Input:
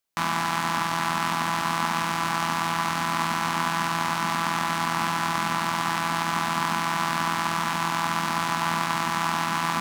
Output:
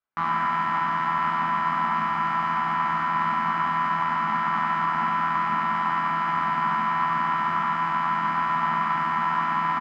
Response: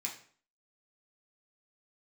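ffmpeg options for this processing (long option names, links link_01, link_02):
-filter_complex "[0:a]lowpass=2000,equalizer=frequency=1300:width_type=o:width=0.78:gain=8,asplit=2[link_01][link_02];[link_02]adelay=13,volume=-2dB[link_03];[link_01][link_03]amix=inputs=2:normalize=0,asplit=2[link_04][link_05];[1:a]atrim=start_sample=2205,adelay=70[link_06];[link_05][link_06]afir=irnorm=-1:irlink=0,volume=-2dB[link_07];[link_04][link_07]amix=inputs=2:normalize=0,volume=-6.5dB"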